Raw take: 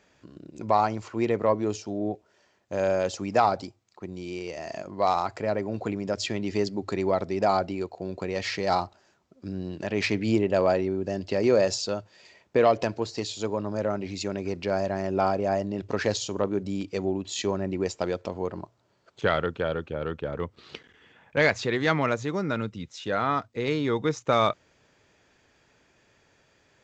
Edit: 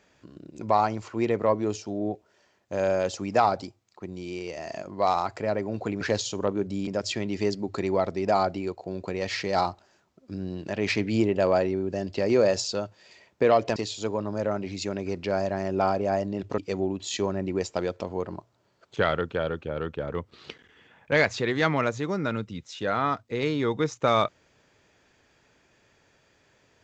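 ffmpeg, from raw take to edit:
ffmpeg -i in.wav -filter_complex "[0:a]asplit=5[link_01][link_02][link_03][link_04][link_05];[link_01]atrim=end=6.012[link_06];[link_02]atrim=start=15.968:end=16.832[link_07];[link_03]atrim=start=6.008:end=12.902[link_08];[link_04]atrim=start=13.148:end=15.972[link_09];[link_05]atrim=start=16.828[link_10];[link_06][link_07]acrossfade=duration=0.004:curve1=hsin:curve2=hsin[link_11];[link_11][link_08]acrossfade=duration=0.004:curve1=hsin:curve2=hsin[link_12];[link_12][link_09]acrossfade=duration=0.004:curve1=hsin:curve2=hsin[link_13];[link_13][link_10]acrossfade=duration=0.004:curve1=hsin:curve2=hsin" out.wav

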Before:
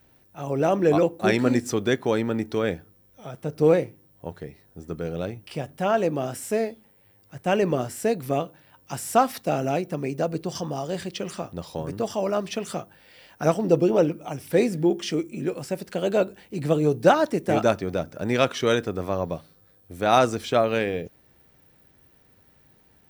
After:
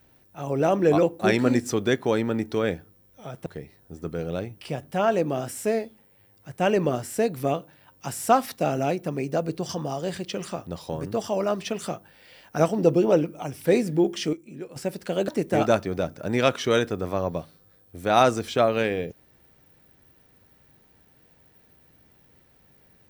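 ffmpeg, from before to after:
ffmpeg -i in.wav -filter_complex "[0:a]asplit=5[link_01][link_02][link_03][link_04][link_05];[link_01]atrim=end=3.462[link_06];[link_02]atrim=start=4.318:end=15.192[link_07];[link_03]atrim=start=15.188:end=15.622,asetpts=PTS-STARTPTS,volume=-10dB[link_08];[link_04]atrim=start=15.618:end=16.142[link_09];[link_05]atrim=start=17.238[link_10];[link_06][link_07]acrossfade=duration=0.004:curve1=hsin:curve2=hsin[link_11];[link_11][link_08]acrossfade=duration=0.004:curve1=hsin:curve2=hsin[link_12];[link_12][link_09]acrossfade=duration=0.004:curve1=hsin:curve2=hsin[link_13];[link_13][link_10]acrossfade=duration=0.004:curve1=hsin:curve2=hsin" out.wav

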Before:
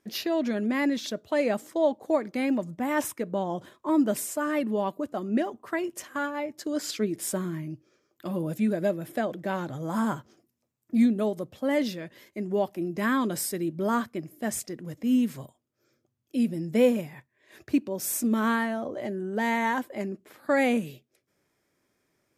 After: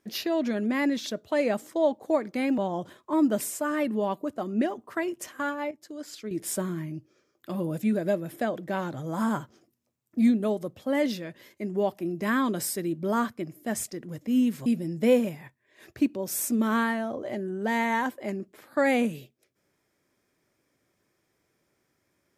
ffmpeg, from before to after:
ffmpeg -i in.wav -filter_complex "[0:a]asplit=5[link_01][link_02][link_03][link_04][link_05];[link_01]atrim=end=2.582[link_06];[link_02]atrim=start=3.338:end=6.472[link_07];[link_03]atrim=start=6.468:end=7.072,asetpts=PTS-STARTPTS,volume=-9.5dB[link_08];[link_04]atrim=start=7.068:end=15.422[link_09];[link_05]atrim=start=16.378[link_10];[link_06][link_07]acrossfade=duration=0.004:curve1=hsin:curve2=hsin[link_11];[link_11][link_08]acrossfade=duration=0.004:curve1=hsin:curve2=hsin[link_12];[link_12][link_09]acrossfade=duration=0.004:curve1=hsin:curve2=hsin[link_13];[link_13][link_10]acrossfade=duration=0.004:curve1=hsin:curve2=hsin" out.wav

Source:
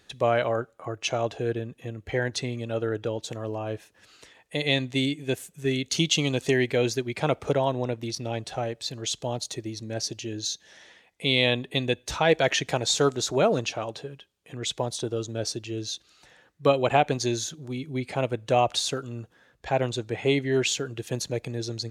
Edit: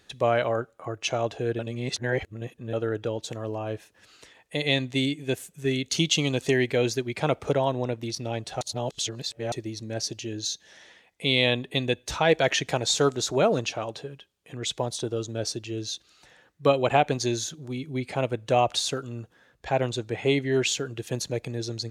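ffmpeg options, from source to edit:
ffmpeg -i in.wav -filter_complex "[0:a]asplit=5[link_01][link_02][link_03][link_04][link_05];[link_01]atrim=end=1.592[link_06];[link_02]atrim=start=1.588:end=2.732,asetpts=PTS-STARTPTS,areverse[link_07];[link_03]atrim=start=2.728:end=8.612[link_08];[link_04]atrim=start=8.608:end=9.522,asetpts=PTS-STARTPTS,areverse[link_09];[link_05]atrim=start=9.518[link_10];[link_06][link_07]acrossfade=duration=0.004:curve1=hsin:curve2=hsin[link_11];[link_11][link_08]acrossfade=duration=0.004:curve1=hsin:curve2=hsin[link_12];[link_12][link_09]acrossfade=duration=0.004:curve1=hsin:curve2=hsin[link_13];[link_13][link_10]acrossfade=duration=0.004:curve1=hsin:curve2=hsin" out.wav

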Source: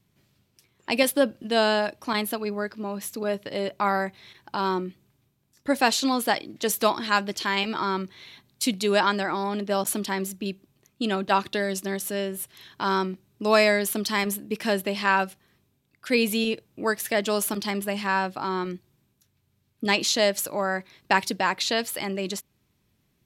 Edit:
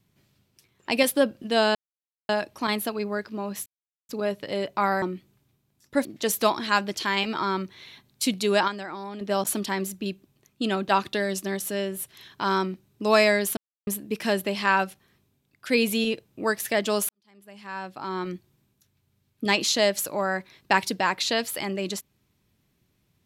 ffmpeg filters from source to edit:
ffmpeg -i in.wav -filter_complex "[0:a]asplit=10[link_01][link_02][link_03][link_04][link_05][link_06][link_07][link_08][link_09][link_10];[link_01]atrim=end=1.75,asetpts=PTS-STARTPTS,afade=type=out:start_time=1.746:duration=0.004:curve=hsin,apad=pad_dur=0.54[link_11];[link_02]atrim=start=1.75:end=3.12,asetpts=PTS-STARTPTS,afade=type=in:duration=0.004:curve=hsin,afade=type=out:start_time=1.366:duration=0.004:curve=hsin,apad=pad_dur=0.43[link_12];[link_03]atrim=start=3.12:end=4.052,asetpts=PTS-STARTPTS,afade=type=in:duration=0.004:curve=hsin[link_13];[link_04]atrim=start=4.748:end=5.782[link_14];[link_05]atrim=start=6.448:end=9.08,asetpts=PTS-STARTPTS,afade=type=out:start_time=2.412:duration=0.22:curve=log:silence=0.375837[link_15];[link_06]atrim=start=9.08:end=9.61,asetpts=PTS-STARTPTS,volume=-8.5dB[link_16];[link_07]atrim=start=9.61:end=13.97,asetpts=PTS-STARTPTS,afade=type=in:duration=0.22:curve=log:silence=0.375837,afade=type=out:start_time=4.356:duration=0.004:curve=hsin[link_17];[link_08]atrim=start=13.97:end=14.27,asetpts=PTS-STARTPTS,volume=0[link_18];[link_09]atrim=start=14.27:end=17.49,asetpts=PTS-STARTPTS,afade=type=in:duration=0.004:curve=hsin,afade=type=out:start_time=3.216:duration=0.004:curve=hsin[link_19];[link_10]atrim=start=17.49,asetpts=PTS-STARTPTS,afade=type=in:duration=1.25:curve=qua[link_20];[link_11][link_12][link_13]concat=n=3:v=0:a=1[link_21];[link_21][link_14]acrossfade=duration=0.004:curve1=hsin:curve2=hsin[link_22];[link_15][link_16][link_17][link_18][link_19][link_20]concat=n=6:v=0:a=1[link_23];[link_22][link_23]acrossfade=duration=0.004:curve1=hsin:curve2=hsin" out.wav

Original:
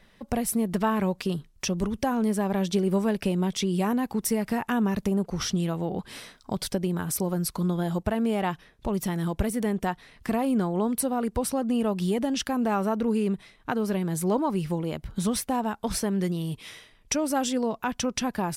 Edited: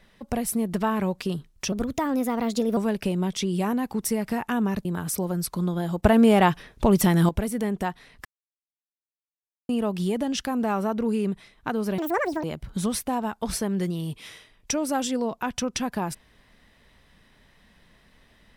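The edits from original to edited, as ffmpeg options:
ffmpeg -i in.wav -filter_complex "[0:a]asplit=10[link_01][link_02][link_03][link_04][link_05][link_06][link_07][link_08][link_09][link_10];[link_01]atrim=end=1.724[link_11];[link_02]atrim=start=1.72:end=2.97,asetpts=PTS-STARTPTS,asetrate=52479,aresample=44100[link_12];[link_03]atrim=start=2.966:end=5.052[link_13];[link_04]atrim=start=6.868:end=8.052[link_14];[link_05]atrim=start=8.048:end=9.312,asetpts=PTS-STARTPTS,volume=9dB[link_15];[link_06]atrim=start=9.308:end=10.27,asetpts=PTS-STARTPTS,afade=type=out:start_time=0.958:duration=0.004:curve=hsin[link_16];[link_07]atrim=start=10.27:end=11.71,asetpts=PTS-STARTPTS,volume=0[link_17];[link_08]atrim=start=11.71:end=14.004,asetpts=PTS-STARTPTS,afade=type=in:duration=0.004:curve=hsin[link_18];[link_09]atrim=start=14:end=14.85,asetpts=PTS-STARTPTS,asetrate=82467,aresample=44100,atrim=end_sample=20045,asetpts=PTS-STARTPTS[link_19];[link_10]atrim=start=14.846[link_20];[link_11][link_12]acrossfade=duration=0.004:curve1=hsin:curve2=hsin[link_21];[link_21][link_13]acrossfade=duration=0.004:curve1=hsin:curve2=hsin[link_22];[link_22][link_14]acrossfade=duration=0.004:curve1=hsin:curve2=hsin[link_23];[link_23][link_15]acrossfade=duration=0.004:curve1=hsin:curve2=hsin[link_24];[link_16][link_17][link_18]concat=n=3:v=0:a=1[link_25];[link_24][link_25]acrossfade=duration=0.004:curve1=hsin:curve2=hsin[link_26];[link_26][link_19]acrossfade=duration=0.004:curve1=hsin:curve2=hsin[link_27];[link_27][link_20]acrossfade=duration=0.004:curve1=hsin:curve2=hsin" out.wav

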